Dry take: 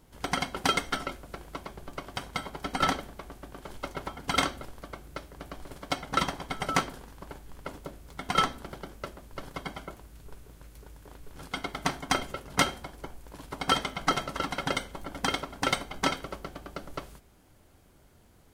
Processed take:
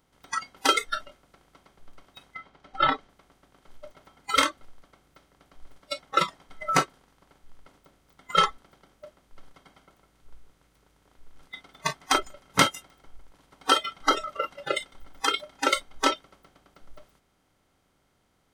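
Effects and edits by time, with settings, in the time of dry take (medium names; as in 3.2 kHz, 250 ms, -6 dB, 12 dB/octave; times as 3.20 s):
2.34–3.08 s: low-pass 3.2 kHz -> 5.6 kHz
9.83–15.72 s: feedback delay 154 ms, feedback 23%, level -11 dB
whole clip: spectral levelling over time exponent 0.6; spectral noise reduction 28 dB; trim +3 dB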